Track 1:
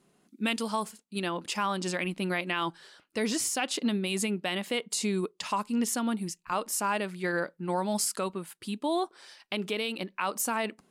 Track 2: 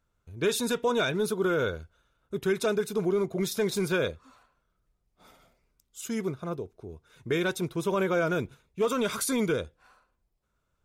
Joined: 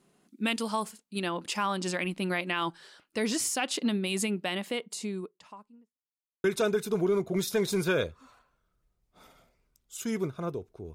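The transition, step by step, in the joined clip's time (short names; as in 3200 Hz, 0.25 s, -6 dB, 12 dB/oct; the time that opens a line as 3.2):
track 1
4.33–5.98 studio fade out
5.98–6.44 mute
6.44 switch to track 2 from 2.48 s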